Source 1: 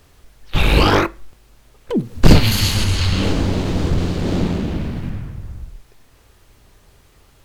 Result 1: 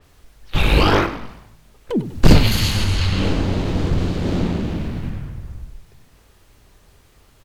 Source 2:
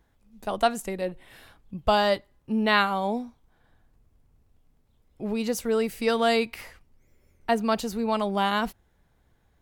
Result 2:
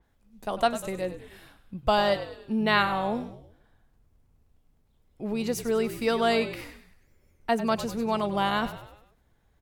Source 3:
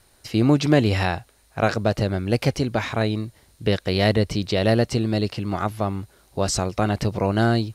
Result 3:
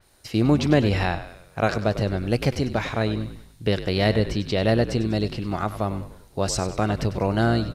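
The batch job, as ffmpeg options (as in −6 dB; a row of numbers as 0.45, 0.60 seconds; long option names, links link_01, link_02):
-filter_complex "[0:a]asplit=2[link_01][link_02];[link_02]asplit=5[link_03][link_04][link_05][link_06][link_07];[link_03]adelay=98,afreqshift=-54,volume=-12.5dB[link_08];[link_04]adelay=196,afreqshift=-108,volume=-18.7dB[link_09];[link_05]adelay=294,afreqshift=-162,volume=-24.9dB[link_10];[link_06]adelay=392,afreqshift=-216,volume=-31.1dB[link_11];[link_07]adelay=490,afreqshift=-270,volume=-37.3dB[link_12];[link_08][link_09][link_10][link_11][link_12]amix=inputs=5:normalize=0[link_13];[link_01][link_13]amix=inputs=2:normalize=0,adynamicequalizer=threshold=0.0126:dfrequency=4700:dqfactor=0.7:tfrequency=4700:tqfactor=0.7:attack=5:release=100:ratio=0.375:range=3:mode=cutabove:tftype=highshelf,volume=-1.5dB"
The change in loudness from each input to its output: −1.5, −1.0, −1.5 LU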